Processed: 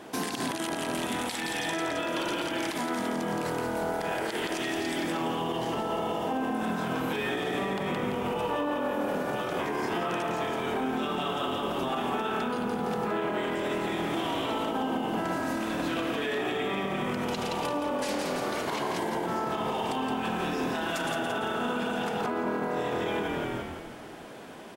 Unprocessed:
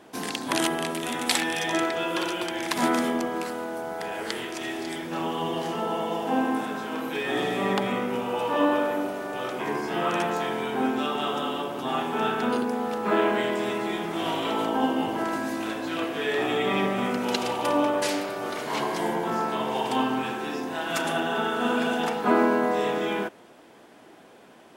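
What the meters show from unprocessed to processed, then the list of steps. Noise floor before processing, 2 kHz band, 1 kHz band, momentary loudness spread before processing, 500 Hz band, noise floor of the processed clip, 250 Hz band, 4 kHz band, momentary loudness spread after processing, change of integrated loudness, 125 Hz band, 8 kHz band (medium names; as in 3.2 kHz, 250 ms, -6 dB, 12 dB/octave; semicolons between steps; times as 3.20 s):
-51 dBFS, -3.5 dB, -3.5 dB, 7 LU, -3.5 dB, -37 dBFS, -3.5 dB, -3.5 dB, 1 LU, -3.5 dB, +0.5 dB, -4.0 dB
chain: on a send: frequency-shifting echo 169 ms, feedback 49%, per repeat -40 Hz, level -6 dB; on the sum: compression, threshold -30 dBFS, peak gain reduction 13.5 dB; peak limiter -27 dBFS, peak gain reduction 11 dB; trim +5.5 dB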